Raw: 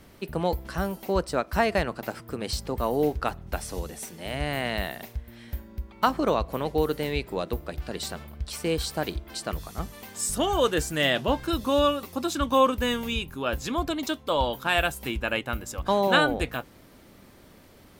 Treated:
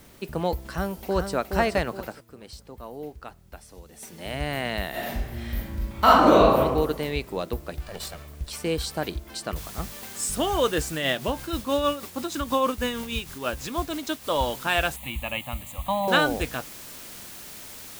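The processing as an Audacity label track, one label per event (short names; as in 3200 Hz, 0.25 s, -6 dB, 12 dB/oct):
0.560000	1.360000	echo throw 0.42 s, feedback 40%, level -6 dB
1.950000	4.180000	dip -13 dB, fades 0.30 s
4.900000	6.580000	reverb throw, RT60 1.1 s, DRR -8.5 dB
7.850000	8.480000	minimum comb delay 1.7 ms
9.560000	9.560000	noise floor step -57 dB -42 dB
10.940000	14.280000	tremolo 6.3 Hz, depth 49%
14.960000	16.080000	fixed phaser centre 1500 Hz, stages 6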